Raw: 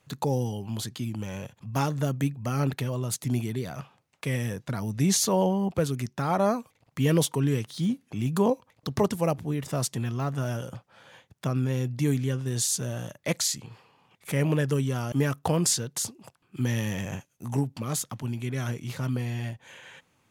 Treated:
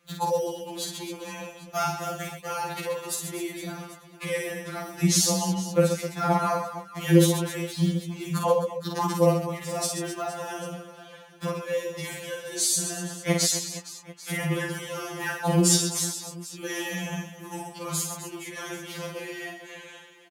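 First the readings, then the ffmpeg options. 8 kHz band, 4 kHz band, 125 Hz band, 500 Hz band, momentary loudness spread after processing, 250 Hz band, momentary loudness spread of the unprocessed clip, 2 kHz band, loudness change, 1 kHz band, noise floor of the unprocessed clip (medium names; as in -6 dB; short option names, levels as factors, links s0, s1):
+3.5 dB, +4.0 dB, -3.0 dB, +2.0 dB, 16 LU, -0.5 dB, 11 LU, +4.0 dB, +1.0 dB, +3.5 dB, -69 dBFS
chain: -af "lowshelf=f=130:g=-10,aecho=1:1:50|130|258|462.8|790.5:0.631|0.398|0.251|0.158|0.1,afftfilt=real='re*2.83*eq(mod(b,8),0)':imag='im*2.83*eq(mod(b,8),0)':win_size=2048:overlap=0.75,volume=1.58"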